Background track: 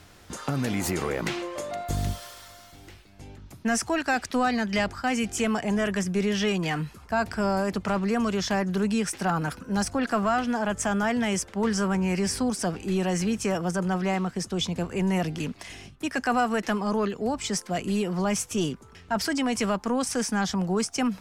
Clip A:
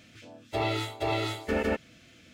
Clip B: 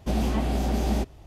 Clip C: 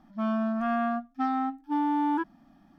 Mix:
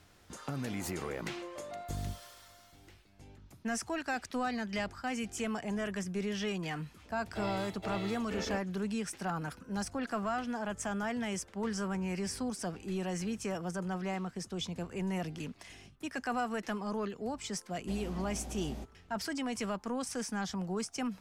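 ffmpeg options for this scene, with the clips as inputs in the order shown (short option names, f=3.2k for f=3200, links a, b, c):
-filter_complex "[0:a]volume=-10dB[a];[1:a]acontrast=82,atrim=end=2.33,asetpts=PTS-STARTPTS,volume=-18dB,afade=t=in:d=0.004:c=hsin,afade=t=out:st=2.326:d=0.004:c=hsin,adelay=300762S[b];[2:a]atrim=end=1.26,asetpts=PTS-STARTPTS,volume=-17.5dB,afade=t=in:d=0.004:c=hsin,afade=t=out:st=1.256:d=0.004:c=hsin,adelay=17810[c];[a][b][c]amix=inputs=3:normalize=0"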